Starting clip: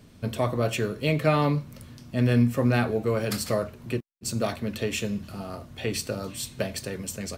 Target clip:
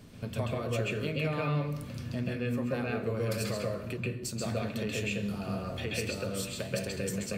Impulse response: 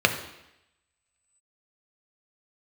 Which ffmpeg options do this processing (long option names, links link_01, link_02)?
-filter_complex "[0:a]acompressor=threshold=-37dB:ratio=3,asplit=2[link_01][link_02];[1:a]atrim=start_sample=2205,adelay=133[link_03];[link_02][link_03]afir=irnorm=-1:irlink=0,volume=-13.5dB[link_04];[link_01][link_04]amix=inputs=2:normalize=0"